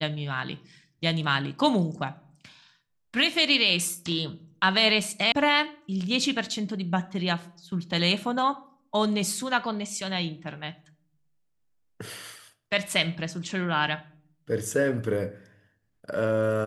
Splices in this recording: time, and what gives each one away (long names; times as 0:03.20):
0:05.32: cut off before it has died away